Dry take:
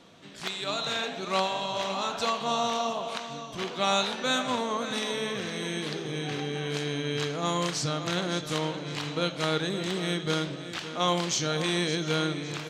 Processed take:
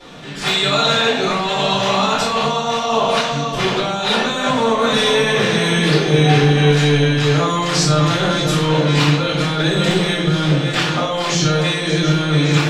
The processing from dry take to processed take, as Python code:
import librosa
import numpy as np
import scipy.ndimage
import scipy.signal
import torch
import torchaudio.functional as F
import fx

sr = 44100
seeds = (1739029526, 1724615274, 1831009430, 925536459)

y = fx.over_compress(x, sr, threshold_db=-32.0, ratio=-1.0)
y = fx.room_shoebox(y, sr, seeds[0], volume_m3=84.0, walls='mixed', distance_m=4.2)